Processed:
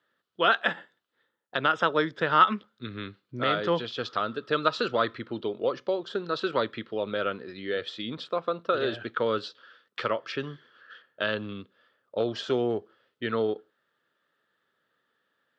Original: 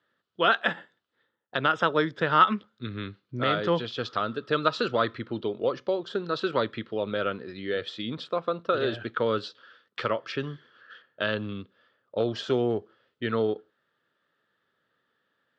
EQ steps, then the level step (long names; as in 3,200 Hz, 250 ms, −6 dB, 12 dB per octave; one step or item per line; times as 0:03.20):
low-shelf EQ 160 Hz −7 dB
0.0 dB